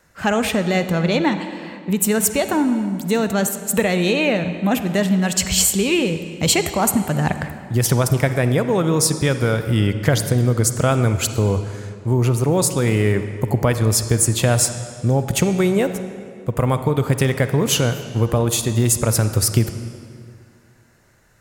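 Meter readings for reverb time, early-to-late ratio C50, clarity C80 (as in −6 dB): 2.3 s, 9.5 dB, 10.5 dB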